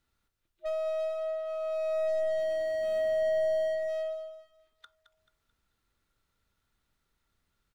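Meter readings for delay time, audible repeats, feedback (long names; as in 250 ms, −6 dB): 218 ms, 3, 39%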